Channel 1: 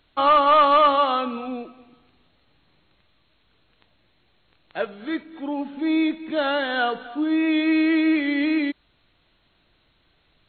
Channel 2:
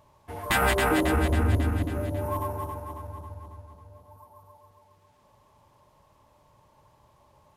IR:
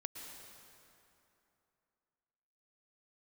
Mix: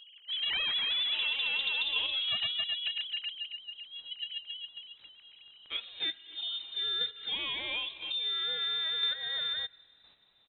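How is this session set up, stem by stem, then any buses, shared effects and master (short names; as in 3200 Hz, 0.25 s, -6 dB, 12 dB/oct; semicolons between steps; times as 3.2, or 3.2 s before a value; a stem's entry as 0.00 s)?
-1.0 dB, 0.95 s, send -23 dB, chopper 0.99 Hz, depth 60%, duty 10%
+1.0 dB, 0.00 s, no send, sine-wave speech; tilt shelf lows +7.5 dB, about 1500 Hz; tube stage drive 20 dB, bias 0.5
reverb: on, RT60 2.9 s, pre-delay 0.103 s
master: inverted band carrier 3900 Hz; compressor 3:1, threshold -32 dBFS, peak gain reduction 12 dB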